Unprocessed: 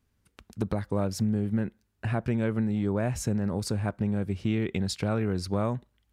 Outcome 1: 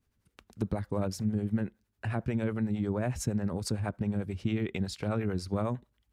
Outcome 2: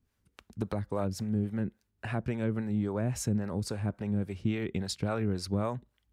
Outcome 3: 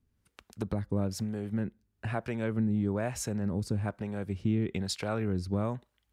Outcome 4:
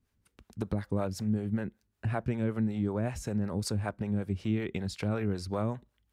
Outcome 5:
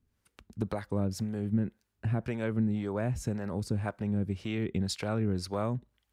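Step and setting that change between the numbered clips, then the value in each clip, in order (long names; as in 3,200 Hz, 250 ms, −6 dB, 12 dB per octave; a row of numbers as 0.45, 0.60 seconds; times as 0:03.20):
two-band tremolo in antiphase, speed: 11, 3.6, 1.1, 5.3, 1.9 Hertz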